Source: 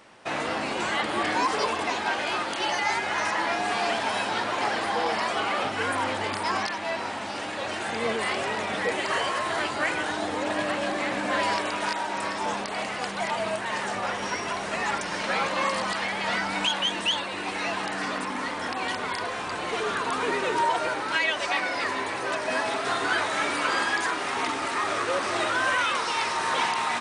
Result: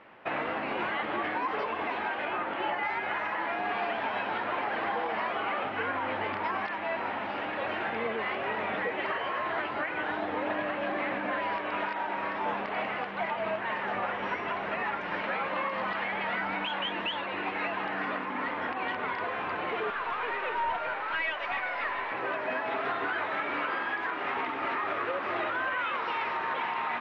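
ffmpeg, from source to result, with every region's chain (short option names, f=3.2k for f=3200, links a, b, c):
-filter_complex "[0:a]asettb=1/sr,asplit=3[a][b][c];[a]atrim=end=2.254[d];[b]atrim=start=2.25:end=2.83,asetpts=PTS-STARTPTS,afade=t=in:d=0.004:c=qsin,afade=t=out:st=0.576:d=0.004:c=qsin,lowpass=f=3.8k:p=1,aemphasis=mode=reproduction:type=50fm[e];[c]atrim=start=2.826[f];[d][e]acrossfade=d=0.004:c1=hsin:c2=qsin[g];[g][f]acrossfade=d=0.004:c1=qsin:c2=hsin,asettb=1/sr,asplit=3[h][i][j];[h]atrim=end=19.904[k];[i]atrim=start=19.9:end=22.12,asetpts=PTS-STARTPTS,afade=t=in:d=0.004:c=qsin,afade=t=out:st=2.216:d=0.004:c=qsin,highpass=580,aeval=exprs='(tanh(14.1*val(0)+0.45)-tanh(0.45))/14.1':c=same[l];[j]atrim=start=22.116[m];[k][l]acrossfade=d=0.004:c1=hsin:c2=qsin[n];[n][m]acrossfade=d=0.004:c1=qsin:c2=hsin,lowpass=f=2.7k:w=0.5412,lowpass=f=2.7k:w=1.3066,lowshelf=f=190:g=-5.5,alimiter=limit=-22dB:level=0:latency=1:release=239"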